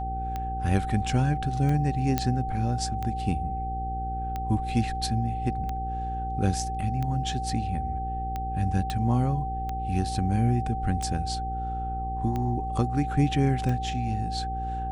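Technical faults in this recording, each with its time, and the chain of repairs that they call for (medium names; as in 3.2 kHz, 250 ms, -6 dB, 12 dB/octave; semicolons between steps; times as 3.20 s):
hum 60 Hz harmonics 8 -33 dBFS
tick 45 rpm -19 dBFS
whine 770 Hz -31 dBFS
2.18 s: pop -10 dBFS
8.90 s: pop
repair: de-click; de-hum 60 Hz, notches 8; band-stop 770 Hz, Q 30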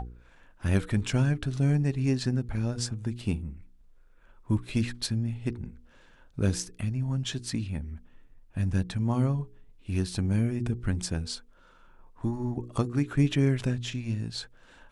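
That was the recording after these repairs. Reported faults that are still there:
nothing left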